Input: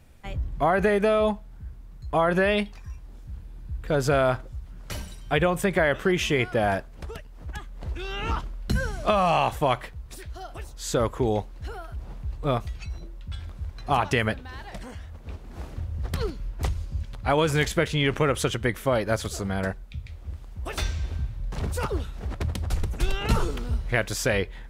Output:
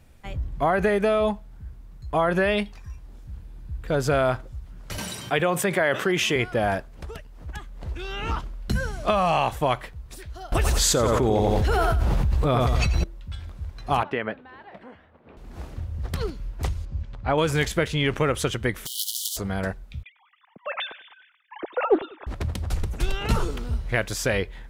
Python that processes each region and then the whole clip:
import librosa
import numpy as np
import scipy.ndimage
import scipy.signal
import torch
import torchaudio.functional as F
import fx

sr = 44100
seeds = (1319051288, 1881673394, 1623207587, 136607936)

y = fx.chain(x, sr, fx.highpass(hz=97.0, slope=24),
    fx.low_shelf(hz=180.0, db=-8.5),
    fx.env_flatten(amount_pct=50), at=(4.98, 6.36))
y = fx.chain(y, sr, fx.echo_feedback(ms=88, feedback_pct=36, wet_db=-7.5),
    fx.env_flatten(amount_pct=100), at=(10.52, 13.04))
y = fx.chain(y, sr, fx.highpass(hz=250.0, slope=12),
    fx.air_absorb(metres=490.0), at=(14.03, 15.37))
y = fx.chain(y, sr, fx.lowpass(hz=8200.0, slope=24),
    fx.high_shelf(hz=3500.0, db=-12.0), at=(16.85, 17.38))
y = fx.spec_flatten(y, sr, power=0.23, at=(18.85, 19.36), fade=0.02)
y = fx.over_compress(y, sr, threshold_db=-26.0, ratio=-0.5, at=(18.85, 19.36), fade=0.02)
y = fx.brickwall_highpass(y, sr, low_hz=2900.0, at=(18.85, 19.36), fade=0.02)
y = fx.chain(y, sr, fx.sine_speech(),
    fx.echo_feedback(ms=97, feedback_pct=40, wet_db=-19.5),
    fx.doppler_dist(depth_ms=0.21), at=(20.03, 22.27))